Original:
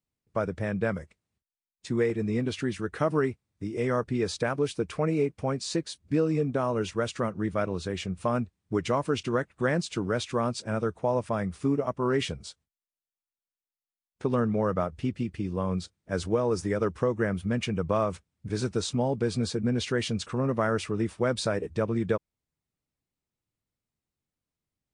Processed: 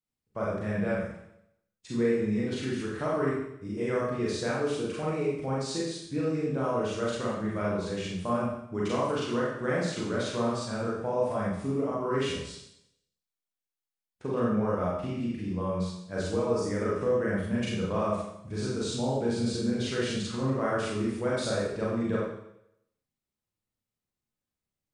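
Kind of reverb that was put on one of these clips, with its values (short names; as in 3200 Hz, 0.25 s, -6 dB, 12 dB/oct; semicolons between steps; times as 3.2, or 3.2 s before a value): Schroeder reverb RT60 0.77 s, combs from 30 ms, DRR -6.5 dB; gain -8.5 dB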